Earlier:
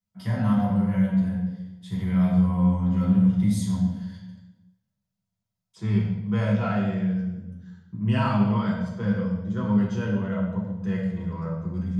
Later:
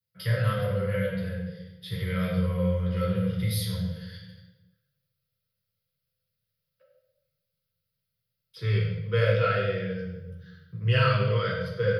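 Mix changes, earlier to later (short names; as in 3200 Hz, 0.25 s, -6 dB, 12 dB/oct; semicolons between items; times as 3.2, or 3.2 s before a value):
second voice: entry +2.80 s; master: add EQ curve 110 Hz 0 dB, 150 Hz +7 dB, 230 Hz -27 dB, 500 Hz +13 dB, 810 Hz -21 dB, 1300 Hz +5 dB, 4900 Hz +9 dB, 7400 Hz -19 dB, 11000 Hz +13 dB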